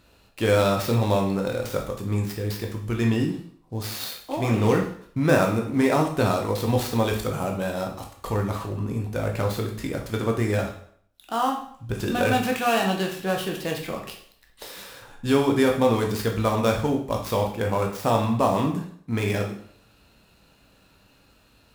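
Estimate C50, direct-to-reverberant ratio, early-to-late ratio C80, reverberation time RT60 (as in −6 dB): 7.0 dB, 1.0 dB, 11.0 dB, 0.60 s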